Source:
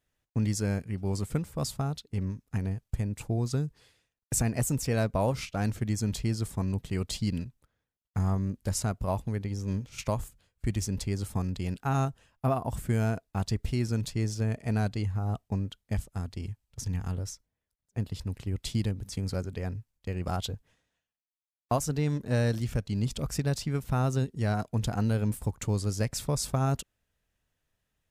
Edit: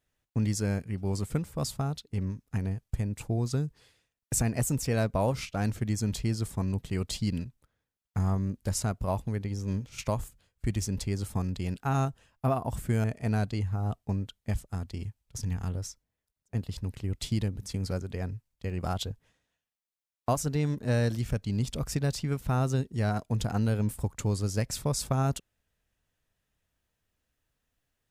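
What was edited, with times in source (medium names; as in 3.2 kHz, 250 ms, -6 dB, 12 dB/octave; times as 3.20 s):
13.04–14.47 s: delete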